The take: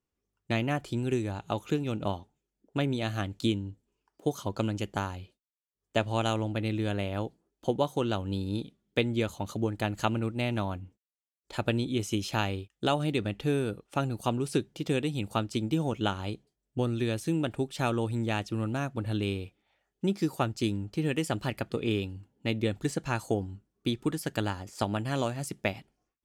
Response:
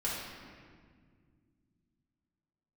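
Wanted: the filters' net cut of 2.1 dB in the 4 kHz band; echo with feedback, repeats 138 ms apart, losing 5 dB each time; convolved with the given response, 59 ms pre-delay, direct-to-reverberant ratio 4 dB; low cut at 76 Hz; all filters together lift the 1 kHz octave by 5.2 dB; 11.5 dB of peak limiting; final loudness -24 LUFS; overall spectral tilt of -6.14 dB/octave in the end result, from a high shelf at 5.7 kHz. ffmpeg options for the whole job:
-filter_complex "[0:a]highpass=76,equalizer=f=1000:t=o:g=7,equalizer=f=4000:t=o:g=-6.5,highshelf=f=5700:g=9,alimiter=limit=0.112:level=0:latency=1,aecho=1:1:138|276|414|552|690|828|966:0.562|0.315|0.176|0.0988|0.0553|0.031|0.0173,asplit=2[s0][s1];[1:a]atrim=start_sample=2205,adelay=59[s2];[s1][s2]afir=irnorm=-1:irlink=0,volume=0.335[s3];[s0][s3]amix=inputs=2:normalize=0,volume=2"

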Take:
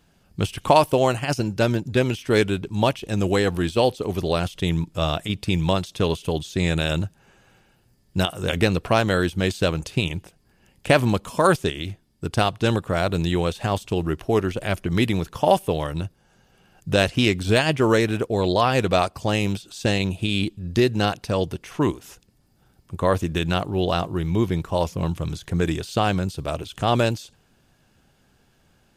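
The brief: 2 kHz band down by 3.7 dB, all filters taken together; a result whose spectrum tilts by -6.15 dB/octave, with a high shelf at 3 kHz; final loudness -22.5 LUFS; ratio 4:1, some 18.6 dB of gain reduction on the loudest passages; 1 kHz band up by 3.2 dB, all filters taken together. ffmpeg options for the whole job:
-af "equalizer=f=1000:t=o:g=6,equalizer=f=2000:t=o:g=-4.5,highshelf=f=3000:g=-7.5,acompressor=threshold=0.0251:ratio=4,volume=4.22"

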